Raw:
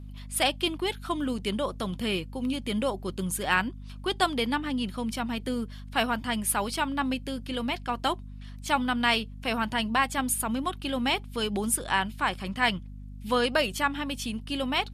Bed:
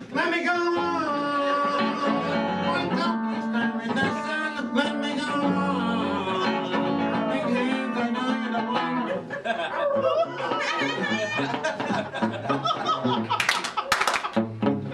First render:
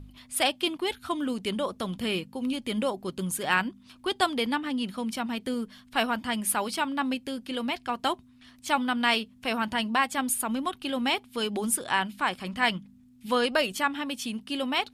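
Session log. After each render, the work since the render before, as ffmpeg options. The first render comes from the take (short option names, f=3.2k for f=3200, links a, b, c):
-af "bandreject=f=50:t=h:w=4,bandreject=f=100:t=h:w=4,bandreject=f=150:t=h:w=4,bandreject=f=200:t=h:w=4"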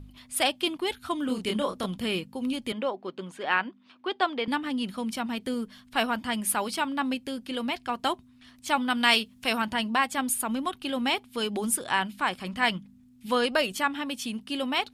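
-filter_complex "[0:a]asettb=1/sr,asplit=3[a][b][c];[a]atrim=end=1.264[d];[b]atrim=start=1.26:end=1.86,asetpts=PTS-STARTPTS,afade=t=in:d=0.004:c=qsin,afade=t=out:st=0.596:d=0.004:c=qsin,asplit=2[e][f];[f]adelay=28,volume=-3.5dB[g];[e][g]amix=inputs=2:normalize=0,atrim=end_sample=26460[h];[c]atrim=start=1.856[i];[d][h]acrossfade=d=0.004:c1=hsin:c2=qsin[j];[j][i]acrossfade=d=0.004:c1=qsin:c2=hsin,asettb=1/sr,asplit=3[k][l][m];[k]atrim=end=2.724[n];[l]atrim=start=2.72:end=4.48,asetpts=PTS-STARTPTS,afade=t=in:d=0.004:c=qsin,afade=t=out:st=1.756:d=0.004:c=qsin,highpass=310,lowpass=3k[o];[m]atrim=start=4.476[p];[n][o]acrossfade=d=0.004:c1=hsin:c2=qsin[q];[q][p]acrossfade=d=0.004:c1=qsin:c2=hsin,asettb=1/sr,asplit=3[r][s][t];[r]atrim=end=8.904[u];[s]atrim=start=8.9:end=9.62,asetpts=PTS-STARTPTS,afade=t=in:d=0.004:c=qsin,afade=t=out:st=0.716:d=0.004:c=qsin,highshelf=f=2.5k:g=7.5[v];[t]atrim=start=9.616[w];[u][v]acrossfade=d=0.004:c1=hsin:c2=qsin[x];[x][w]acrossfade=d=0.004:c1=qsin:c2=hsin"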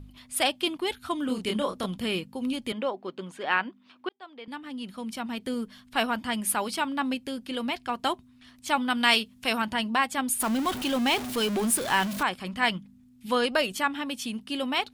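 -filter_complex "[0:a]asettb=1/sr,asplit=3[a][b][c];[a]atrim=end=10.404[d];[b]atrim=start=10.4:end=12.23,asetpts=PTS-STARTPTS,afade=t=in:d=0.004:c=qsin,afade=t=out:st=1.826:d=0.004:c=qsin,aeval=exprs='val(0)+0.5*0.0355*sgn(val(0))':c=same[e];[c]atrim=start=12.226[f];[d][e]acrossfade=d=0.004:c1=hsin:c2=qsin[g];[g][f]acrossfade=d=0.004:c1=qsin:c2=hsin,asplit=2[h][i];[h]atrim=end=4.09,asetpts=PTS-STARTPTS,afade=t=out:st=4.086:d=0.004:c=hsin[j];[i]atrim=start=4.09,asetpts=PTS-STARTPTS,afade=t=in:d=1.52[k];[j][k]concat=n=2:v=0:a=1"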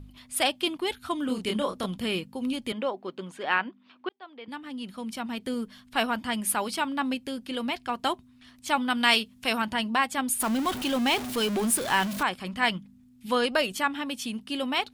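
-filter_complex "[0:a]asettb=1/sr,asplit=3[a][b][c];[a]atrim=end=3.584[d];[b]atrim=start=3.58:end=4.49,asetpts=PTS-STARTPTS,afade=t=in:d=0.004:c=qsin,afade=t=out:st=0.906:d=0.004:c=qsin,highpass=110,lowpass=4.5k[e];[c]atrim=start=4.486[f];[d][e]acrossfade=d=0.004:c1=hsin:c2=qsin[g];[g][f]acrossfade=d=0.004:c1=qsin:c2=hsin"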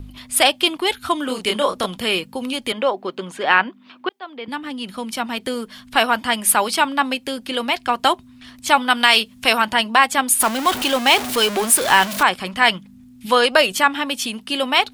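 -filter_complex "[0:a]acrossover=split=400|6500[a][b][c];[a]acompressor=threshold=-43dB:ratio=6[d];[d][b][c]amix=inputs=3:normalize=0,alimiter=level_in=11.5dB:limit=-1dB:release=50:level=0:latency=1"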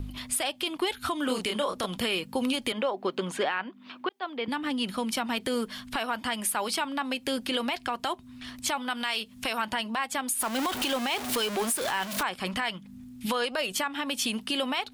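-af "acompressor=threshold=-23dB:ratio=5,alimiter=limit=-18dB:level=0:latency=1:release=65"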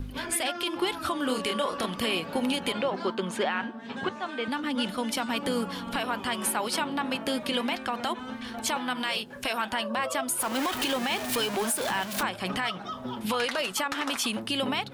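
-filter_complex "[1:a]volume=-12.5dB[a];[0:a][a]amix=inputs=2:normalize=0"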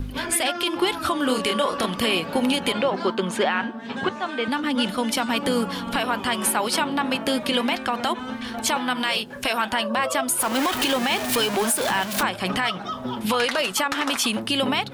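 -af "volume=6dB"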